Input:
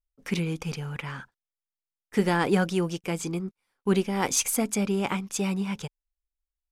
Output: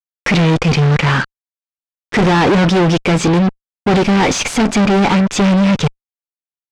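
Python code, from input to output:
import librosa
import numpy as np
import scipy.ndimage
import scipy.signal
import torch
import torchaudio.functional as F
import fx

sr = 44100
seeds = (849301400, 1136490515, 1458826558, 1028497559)

y = fx.fuzz(x, sr, gain_db=42.0, gate_db=-46.0)
y = fx.air_absorb(y, sr, metres=130.0)
y = y * librosa.db_to_amplitude(3.5)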